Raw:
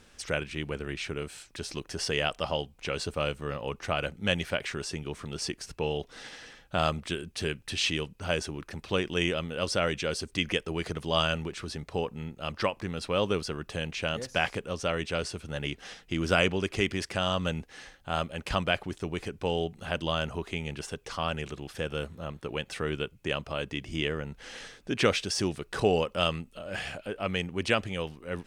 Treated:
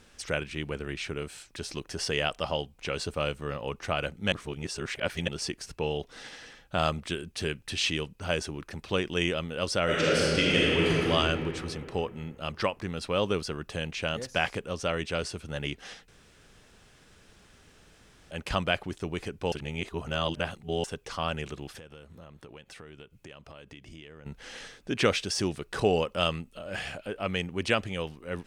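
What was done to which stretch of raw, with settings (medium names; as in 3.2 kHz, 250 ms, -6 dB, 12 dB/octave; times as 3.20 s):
4.32–5.28 s: reverse
9.84–11.09 s: reverb throw, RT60 2.9 s, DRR -7 dB
16.08–18.31 s: room tone
19.52–20.84 s: reverse
21.78–24.26 s: compression 5:1, threshold -45 dBFS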